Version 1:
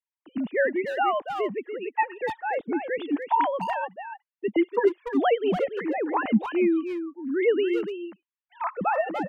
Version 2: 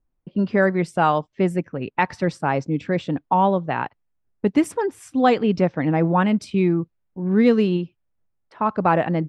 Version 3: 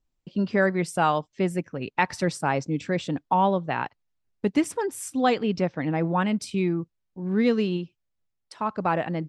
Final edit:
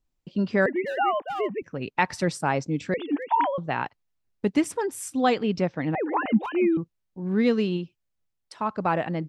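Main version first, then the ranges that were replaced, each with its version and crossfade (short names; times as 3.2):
3
0.66–1.62 from 1
2.94–3.58 from 1
5.95–6.77 from 1
not used: 2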